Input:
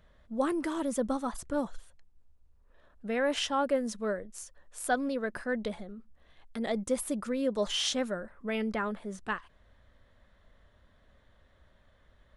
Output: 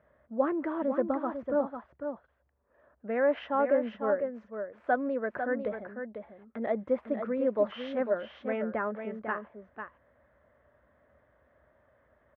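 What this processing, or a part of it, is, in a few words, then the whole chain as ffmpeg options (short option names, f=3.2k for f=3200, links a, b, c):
bass cabinet: -af "highpass=f=74:w=0.5412,highpass=f=74:w=1.3066,equalizer=f=95:t=q:w=4:g=-10,equalizer=f=180:t=q:w=4:g=-8,equalizer=f=600:t=q:w=4:g=6,lowpass=f=2k:w=0.5412,lowpass=f=2k:w=1.3066,aecho=1:1:498:0.422"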